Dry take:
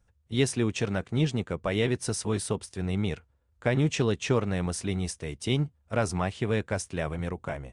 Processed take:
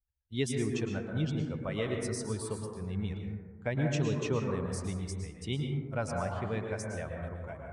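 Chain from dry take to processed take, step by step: per-bin expansion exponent 1.5; plate-style reverb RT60 1.5 s, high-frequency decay 0.25×, pre-delay 0.1 s, DRR 1 dB; gain -5.5 dB

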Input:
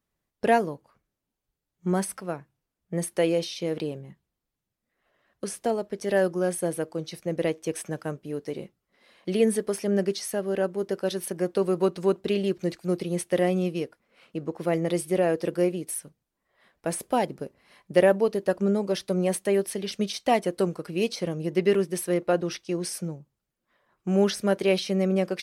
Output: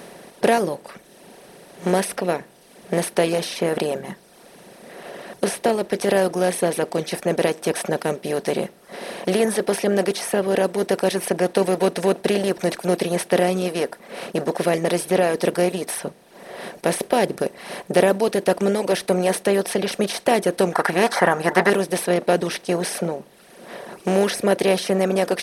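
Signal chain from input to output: per-bin compression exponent 0.4; reverb removal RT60 0.89 s; 20.72–21.7 band shelf 1200 Hz +13 dB

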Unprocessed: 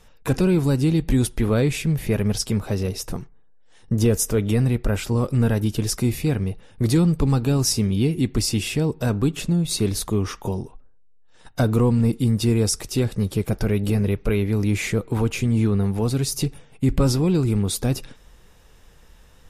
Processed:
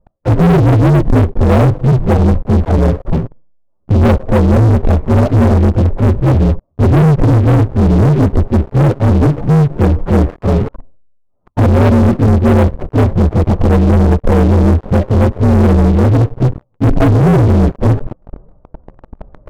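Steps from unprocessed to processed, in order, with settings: inharmonic rescaling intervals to 124%; inverse Chebyshev low-pass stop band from 5300 Hz, stop band 80 dB; low shelf 480 Hz +4 dB; sample leveller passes 5; reverse; upward compressor, threshold -16 dBFS; reverse

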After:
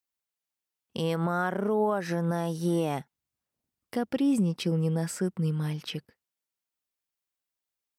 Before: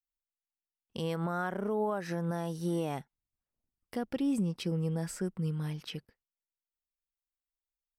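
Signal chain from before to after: HPF 92 Hz; gain +5.5 dB

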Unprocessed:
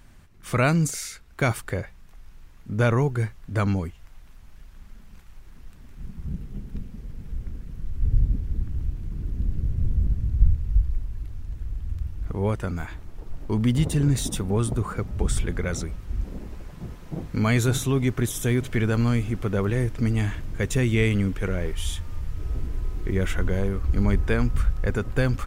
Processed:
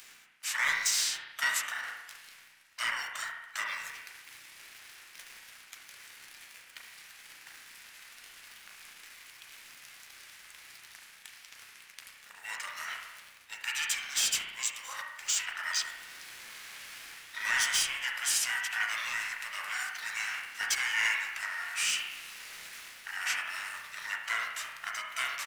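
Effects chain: inverse Chebyshev high-pass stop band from 380 Hz, stop band 80 dB; in parallel at 0 dB: compressor 10:1, threshold -49 dBFS, peak gain reduction 21.5 dB; on the sum: sample leveller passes 2; reverse; upward compressor, threshold -35 dBFS; reverse; spring tank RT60 1 s, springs 33 ms, chirp 70 ms, DRR -0.5 dB; formant shift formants -3 st; echo 72 ms -23.5 dB; harmoniser -12 st -15 dB, -4 st -9 dB; gain -3.5 dB

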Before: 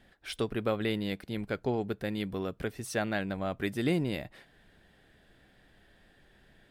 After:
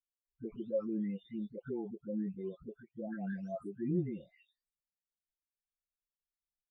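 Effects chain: spectral delay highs late, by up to 0.779 s; limiter -27 dBFS, peak gain reduction 7.5 dB; spectral expander 2.5:1; gain +4 dB

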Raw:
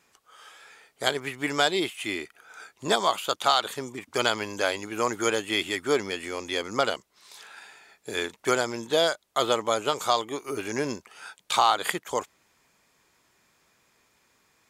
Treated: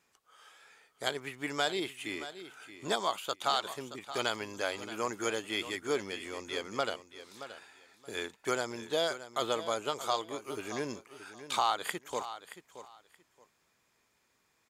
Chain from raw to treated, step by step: feedback echo 0.625 s, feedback 20%, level -13 dB; gain -8 dB

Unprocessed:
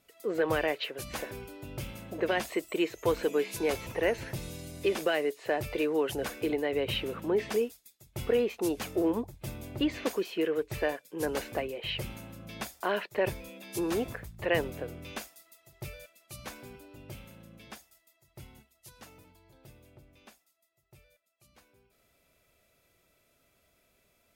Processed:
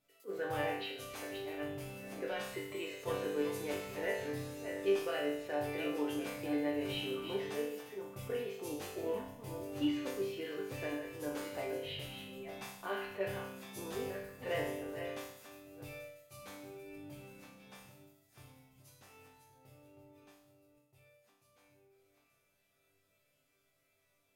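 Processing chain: reverse delay 0.547 s, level -7.5 dB; resonator bank G2 sus4, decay 0.76 s; attack slew limiter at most 360 dB/s; gain +9.5 dB

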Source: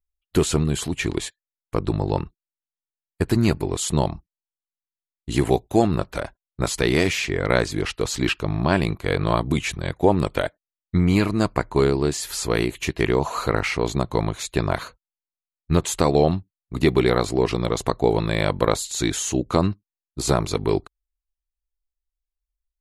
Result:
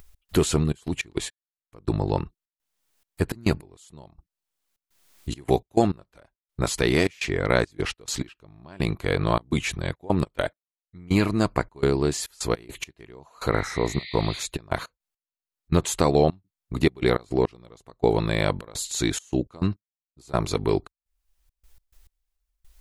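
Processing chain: upward compressor, threshold -25 dBFS; step gate "x.xxx.x.x....xxx" 104 bpm -24 dB; spectral repair 13.56–14.37, 1800–4900 Hz both; gain -1.5 dB

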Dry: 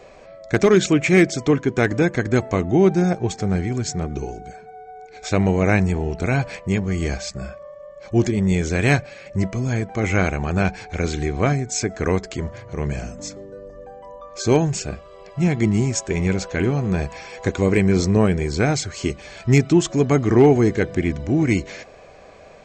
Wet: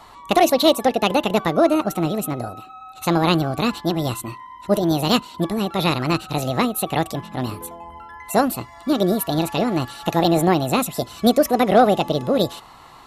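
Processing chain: speed mistake 45 rpm record played at 78 rpm

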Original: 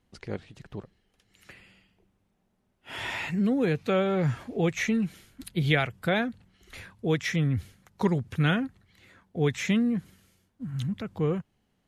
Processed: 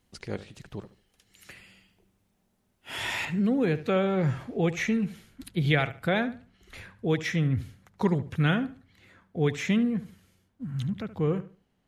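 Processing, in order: high shelf 4200 Hz +9 dB, from 3.25 s -4 dB; darkening echo 73 ms, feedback 27%, low-pass 4200 Hz, level -14.5 dB

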